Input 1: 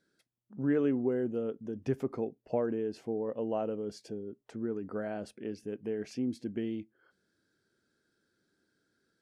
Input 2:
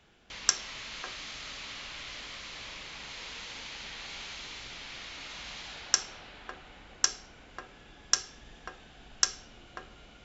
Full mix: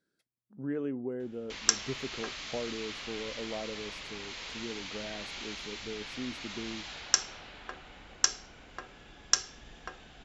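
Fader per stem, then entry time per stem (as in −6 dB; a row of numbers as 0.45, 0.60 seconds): −6.0, +0.5 decibels; 0.00, 1.20 seconds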